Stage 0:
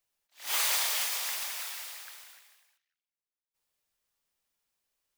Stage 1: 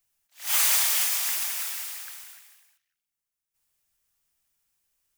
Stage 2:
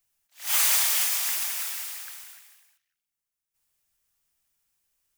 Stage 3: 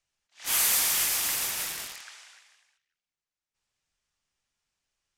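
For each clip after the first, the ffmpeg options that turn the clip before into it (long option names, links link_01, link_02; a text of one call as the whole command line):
ffmpeg -i in.wav -af "equalizer=frequency=250:width_type=o:width=1:gain=-5,equalizer=frequency=500:width_type=o:width=1:gain=-9,equalizer=frequency=1000:width_type=o:width=1:gain=-5,equalizer=frequency=2000:width_type=o:width=1:gain=-3,equalizer=frequency=4000:width_type=o:width=1:gain=-6,volume=8.5dB" out.wav
ffmpeg -i in.wav -af anull out.wav
ffmpeg -i in.wav -filter_complex "[0:a]acrossover=split=7500[link_01][link_02];[link_01]volume=27.5dB,asoftclip=hard,volume=-27.5dB[link_03];[link_02]acrusher=bits=4:mix=0:aa=0.000001[link_04];[link_03][link_04]amix=inputs=2:normalize=0,aresample=32000,aresample=44100" out.wav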